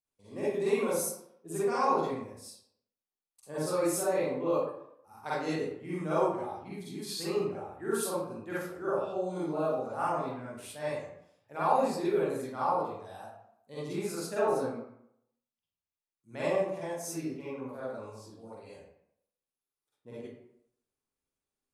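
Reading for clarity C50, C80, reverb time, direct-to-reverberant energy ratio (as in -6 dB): -3.5 dB, 2.5 dB, 0.70 s, -10.5 dB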